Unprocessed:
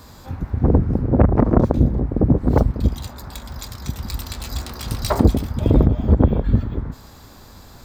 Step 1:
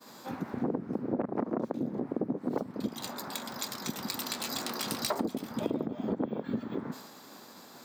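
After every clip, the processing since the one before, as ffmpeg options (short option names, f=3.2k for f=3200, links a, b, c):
-af "highpass=f=200:w=0.5412,highpass=f=200:w=1.3066,agate=range=-33dB:threshold=-42dB:ratio=3:detection=peak,acompressor=threshold=-29dB:ratio=6"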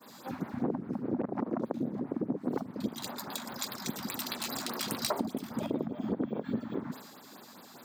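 -af "afftfilt=real='re*(1-between(b*sr/1024,370*pow(7200/370,0.5+0.5*sin(2*PI*4.9*pts/sr))/1.41,370*pow(7200/370,0.5+0.5*sin(2*PI*4.9*pts/sr))*1.41))':imag='im*(1-between(b*sr/1024,370*pow(7200/370,0.5+0.5*sin(2*PI*4.9*pts/sr))/1.41,370*pow(7200/370,0.5+0.5*sin(2*PI*4.9*pts/sr))*1.41))':win_size=1024:overlap=0.75"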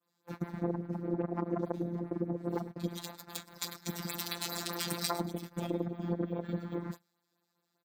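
-filter_complex "[0:a]afftfilt=real='hypot(re,im)*cos(PI*b)':imag='0':win_size=1024:overlap=0.75,asplit=2[a][b];[b]adelay=105,volume=-14dB,highshelf=f=4k:g=-2.36[c];[a][c]amix=inputs=2:normalize=0,agate=range=-28dB:threshold=-42dB:ratio=16:detection=peak,volume=2.5dB"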